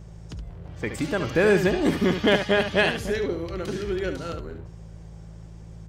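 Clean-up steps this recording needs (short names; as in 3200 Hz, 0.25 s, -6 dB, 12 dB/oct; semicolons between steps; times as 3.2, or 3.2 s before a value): clip repair -9.5 dBFS; de-hum 54.8 Hz, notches 3; inverse comb 71 ms -9 dB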